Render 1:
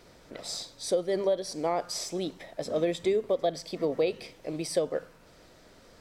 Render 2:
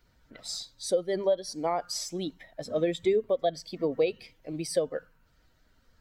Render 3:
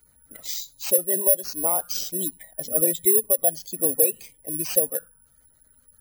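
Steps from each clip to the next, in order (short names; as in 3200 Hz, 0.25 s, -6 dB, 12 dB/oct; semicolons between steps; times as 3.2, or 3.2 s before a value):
per-bin expansion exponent 1.5; gain +2.5 dB
careless resampling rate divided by 4×, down none, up zero stuff; spectral gate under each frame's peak -25 dB strong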